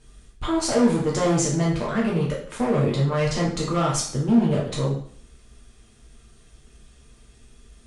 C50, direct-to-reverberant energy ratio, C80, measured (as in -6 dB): 4.5 dB, -5.0 dB, 9.0 dB